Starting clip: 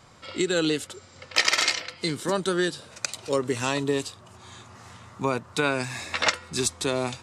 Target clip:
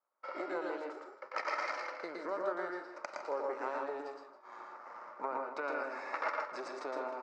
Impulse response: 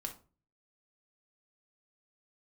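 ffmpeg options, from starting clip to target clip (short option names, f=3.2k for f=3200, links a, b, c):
-filter_complex "[0:a]aeval=exprs='if(lt(val(0),0),0.251*val(0),val(0))':c=same,agate=range=-32dB:threshold=-48dB:ratio=16:detection=peak,highshelf=f=2k:t=q:w=1.5:g=-12,acompressor=threshold=-37dB:ratio=3,highpass=f=330:w=0.5412,highpass=f=330:w=1.3066,equalizer=f=580:t=q:w=4:g=8,equalizer=f=900:t=q:w=4:g=6,equalizer=f=1.3k:t=q:w=4:g=6,equalizer=f=2.2k:t=q:w=4:g=8,equalizer=f=3.5k:t=q:w=4:g=-7,equalizer=f=5.1k:t=q:w=4:g=5,lowpass=f=5.6k:w=0.5412,lowpass=f=5.6k:w=1.3066,asplit=2[a][b];[b]adelay=157.4,volume=-11dB,highshelf=f=4k:g=-3.54[c];[a][c]amix=inputs=2:normalize=0,asplit=2[d][e];[1:a]atrim=start_sample=2205,asetrate=52920,aresample=44100,adelay=114[f];[e][f]afir=irnorm=-1:irlink=0,volume=1.5dB[g];[d][g]amix=inputs=2:normalize=0,volume=-3.5dB"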